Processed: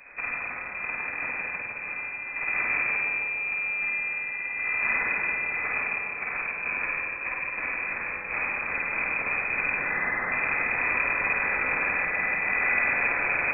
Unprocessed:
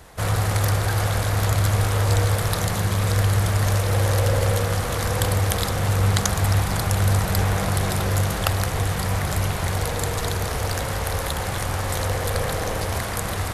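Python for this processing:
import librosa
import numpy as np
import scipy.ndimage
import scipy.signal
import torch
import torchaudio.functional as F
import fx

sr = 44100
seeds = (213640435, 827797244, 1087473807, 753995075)

p1 = fx.highpass(x, sr, hz=410.0, slope=24, at=(9.77, 10.32))
p2 = fx.over_compress(p1, sr, threshold_db=-25.0, ratio=-0.5)
p3 = p2 + fx.echo_thinned(p2, sr, ms=154, feedback_pct=80, hz=830.0, wet_db=-7, dry=0)
p4 = fx.rev_spring(p3, sr, rt60_s=1.6, pass_ms=(46, 50), chirp_ms=30, drr_db=-4.0)
p5 = fx.freq_invert(p4, sr, carrier_hz=2500)
y = p5 * librosa.db_to_amplitude(-9.0)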